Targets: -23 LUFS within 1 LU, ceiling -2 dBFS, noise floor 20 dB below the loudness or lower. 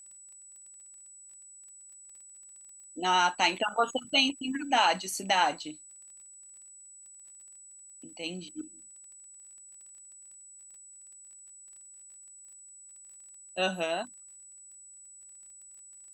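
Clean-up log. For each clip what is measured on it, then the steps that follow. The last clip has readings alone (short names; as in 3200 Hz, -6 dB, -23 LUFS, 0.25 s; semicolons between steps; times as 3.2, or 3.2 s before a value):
ticks 22/s; steady tone 7900 Hz; tone level -49 dBFS; loudness -28.5 LUFS; peak -11.0 dBFS; loudness target -23.0 LUFS
-> de-click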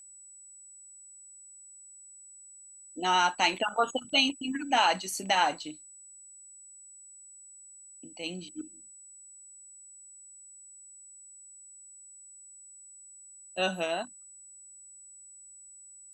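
ticks 0.062/s; steady tone 7900 Hz; tone level -49 dBFS
-> notch 7900 Hz, Q 30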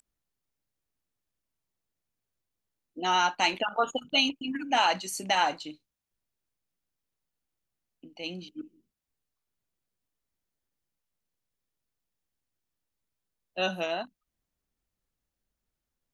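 steady tone none; loudness -28.0 LUFS; peak -11.0 dBFS; loudness target -23.0 LUFS
-> gain +5 dB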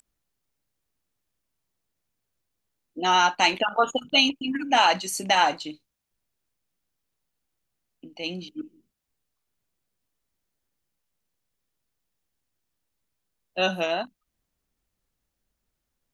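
loudness -23.0 LUFS; peak -6.0 dBFS; noise floor -81 dBFS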